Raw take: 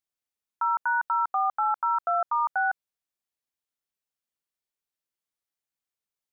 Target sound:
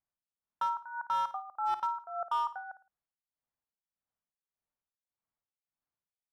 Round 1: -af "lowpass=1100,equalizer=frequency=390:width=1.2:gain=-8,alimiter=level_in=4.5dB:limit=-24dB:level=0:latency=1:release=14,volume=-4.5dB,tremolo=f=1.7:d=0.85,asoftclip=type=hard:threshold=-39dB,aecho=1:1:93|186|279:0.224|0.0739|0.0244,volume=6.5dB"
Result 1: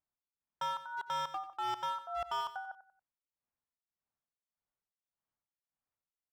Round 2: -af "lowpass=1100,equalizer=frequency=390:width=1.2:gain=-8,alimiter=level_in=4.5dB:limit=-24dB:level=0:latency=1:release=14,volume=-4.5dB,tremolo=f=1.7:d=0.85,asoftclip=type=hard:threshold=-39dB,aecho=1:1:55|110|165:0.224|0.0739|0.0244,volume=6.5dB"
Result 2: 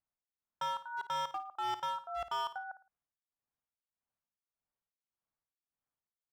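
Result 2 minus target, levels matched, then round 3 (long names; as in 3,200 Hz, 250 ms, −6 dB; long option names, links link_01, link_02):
hard clipping: distortion +13 dB
-af "lowpass=1100,equalizer=frequency=390:width=1.2:gain=-8,alimiter=level_in=4.5dB:limit=-24dB:level=0:latency=1:release=14,volume=-4.5dB,tremolo=f=1.7:d=0.85,asoftclip=type=hard:threshold=-31.5dB,aecho=1:1:55|110|165:0.224|0.0739|0.0244,volume=6.5dB"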